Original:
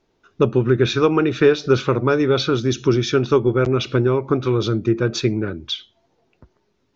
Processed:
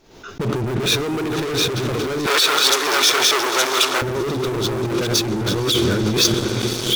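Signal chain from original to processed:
delay that plays each chunk backwards 634 ms, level −2.5 dB
feedback delay with all-pass diffusion 529 ms, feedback 55%, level −13 dB
four-comb reverb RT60 3.3 s, combs from 26 ms, DRR 17 dB
leveller curve on the samples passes 5
0:02.26–0:04.02: high-pass filter 840 Hz 12 dB per octave
compressor whose output falls as the input rises −10 dBFS, ratio −1
high-shelf EQ 5,100 Hz +9 dB
background raised ahead of every attack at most 88 dB per second
level −10.5 dB

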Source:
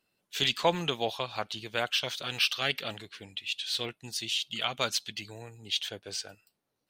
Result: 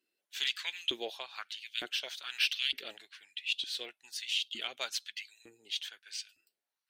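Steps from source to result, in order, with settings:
auto-filter high-pass saw up 1.1 Hz 310–3,700 Hz
flat-topped bell 770 Hz −9.5 dB
harmonic generator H 7 −36 dB, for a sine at −9 dBFS
level −5.5 dB

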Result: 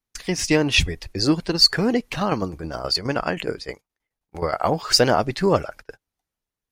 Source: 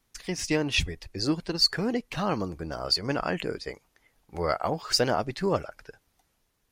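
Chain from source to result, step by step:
0:02.14–0:04.57: shaped tremolo saw down 9.5 Hz, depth 50% → 85%
noise gate −46 dBFS, range −22 dB
level +7.5 dB

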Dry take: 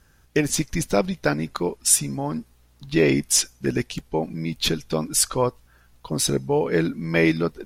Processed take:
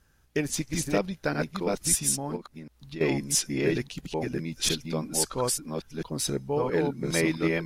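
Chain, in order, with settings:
delay that plays each chunk backwards 670 ms, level −2 dB
0:02.36–0:03.01: downward compressor 2.5 to 1, threshold −35 dBFS, peak gain reduction 14 dB
level −7 dB

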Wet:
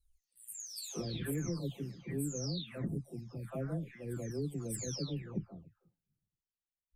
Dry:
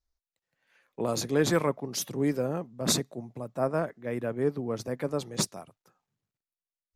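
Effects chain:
every frequency bin delayed by itself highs early, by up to 691 ms
guitar amp tone stack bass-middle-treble 10-0-1
downward compressor 5 to 1, threshold −50 dBFS, peak gain reduction 9 dB
level +16.5 dB

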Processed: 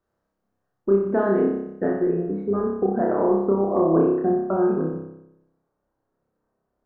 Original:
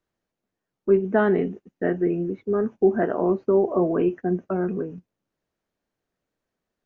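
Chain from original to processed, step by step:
high shelf with overshoot 1,700 Hz −8 dB, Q 1.5, from 0:01.84 −14 dB
downward compressor, threshold −22 dBFS, peak gain reduction 9.5 dB
flutter between parallel walls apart 5.2 metres, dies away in 0.85 s
level +2.5 dB

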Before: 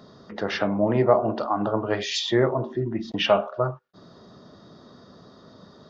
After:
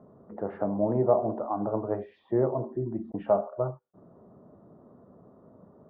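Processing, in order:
transistor ladder low-pass 1,100 Hz, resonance 20%

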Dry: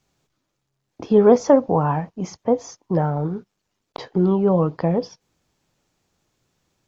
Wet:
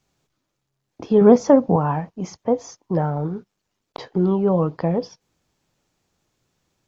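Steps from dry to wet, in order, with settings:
0:01.21–0:01.76: parametric band 180 Hz +8 dB 1.1 octaves
level −1 dB

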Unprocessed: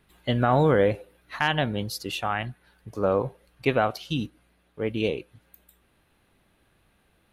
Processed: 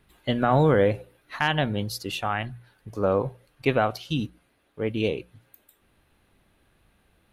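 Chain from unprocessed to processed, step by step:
low-shelf EQ 130 Hz +4.5 dB
mains-hum notches 60/120/180 Hz

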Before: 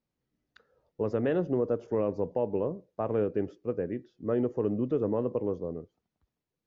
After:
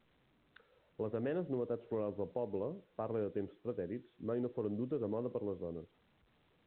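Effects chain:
downward compressor 1.5 to 1, threshold −43 dBFS, peak gain reduction 7.5 dB
level −2.5 dB
A-law companding 64 kbit/s 8,000 Hz

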